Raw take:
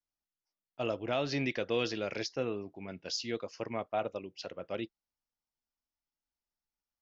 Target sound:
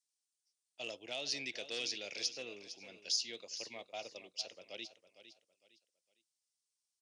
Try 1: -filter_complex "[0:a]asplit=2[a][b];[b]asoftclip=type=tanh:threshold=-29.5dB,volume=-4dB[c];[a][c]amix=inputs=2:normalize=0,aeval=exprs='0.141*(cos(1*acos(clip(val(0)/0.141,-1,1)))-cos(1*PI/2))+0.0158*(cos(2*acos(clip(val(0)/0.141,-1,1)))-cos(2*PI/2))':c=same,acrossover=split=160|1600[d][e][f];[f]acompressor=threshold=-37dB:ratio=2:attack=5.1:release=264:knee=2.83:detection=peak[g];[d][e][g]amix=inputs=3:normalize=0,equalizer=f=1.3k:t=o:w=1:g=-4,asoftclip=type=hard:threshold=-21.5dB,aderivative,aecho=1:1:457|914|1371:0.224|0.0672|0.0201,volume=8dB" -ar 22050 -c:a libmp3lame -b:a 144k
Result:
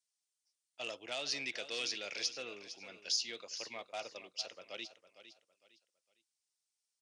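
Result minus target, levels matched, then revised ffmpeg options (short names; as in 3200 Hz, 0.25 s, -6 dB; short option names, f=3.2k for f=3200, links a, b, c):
soft clip: distortion +12 dB; 1000 Hz band +3.0 dB
-filter_complex "[0:a]asplit=2[a][b];[b]asoftclip=type=tanh:threshold=-21dB,volume=-4dB[c];[a][c]amix=inputs=2:normalize=0,aeval=exprs='0.141*(cos(1*acos(clip(val(0)/0.141,-1,1)))-cos(1*PI/2))+0.0158*(cos(2*acos(clip(val(0)/0.141,-1,1)))-cos(2*PI/2))':c=same,acrossover=split=160|1600[d][e][f];[f]acompressor=threshold=-37dB:ratio=2:attack=5.1:release=264:knee=2.83:detection=peak[g];[d][e][g]amix=inputs=3:normalize=0,equalizer=f=1.3k:t=o:w=1:g=-15.5,asoftclip=type=hard:threshold=-21.5dB,aderivative,aecho=1:1:457|914|1371:0.224|0.0672|0.0201,volume=8dB" -ar 22050 -c:a libmp3lame -b:a 144k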